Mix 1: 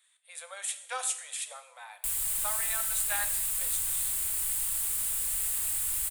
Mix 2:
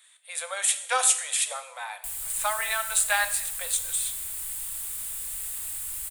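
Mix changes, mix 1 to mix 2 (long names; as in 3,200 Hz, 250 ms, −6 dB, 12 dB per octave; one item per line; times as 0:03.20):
speech +10.5 dB
background −3.5 dB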